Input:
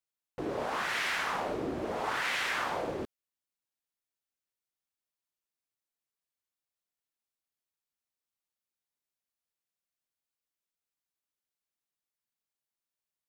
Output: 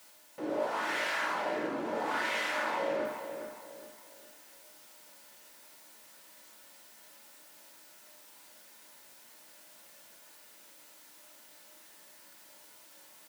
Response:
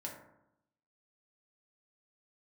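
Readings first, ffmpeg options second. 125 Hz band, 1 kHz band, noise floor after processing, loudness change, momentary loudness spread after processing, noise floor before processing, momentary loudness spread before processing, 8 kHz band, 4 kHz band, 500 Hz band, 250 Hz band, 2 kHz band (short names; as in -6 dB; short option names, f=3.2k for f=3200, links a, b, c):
-9.0 dB, +0.5 dB, -56 dBFS, -1.0 dB, 21 LU, under -85 dBFS, 10 LU, 0.0 dB, -2.5 dB, +2.5 dB, 0.0 dB, -0.5 dB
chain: -filter_complex "[0:a]aeval=exprs='val(0)+0.5*0.00447*sgn(val(0))':c=same,highpass=250,areverse,acompressor=mode=upward:threshold=-48dB:ratio=2.5,areverse,asplit=2[a][b];[b]adelay=413,lowpass=f=3.3k:p=1,volume=-8.5dB,asplit=2[c][d];[d]adelay=413,lowpass=f=3.3k:p=1,volume=0.37,asplit=2[e][f];[f]adelay=413,lowpass=f=3.3k:p=1,volume=0.37,asplit=2[g][h];[h]adelay=413,lowpass=f=3.3k:p=1,volume=0.37[i];[a][c][e][g][i]amix=inputs=5:normalize=0[j];[1:a]atrim=start_sample=2205,atrim=end_sample=6615[k];[j][k]afir=irnorm=-1:irlink=0"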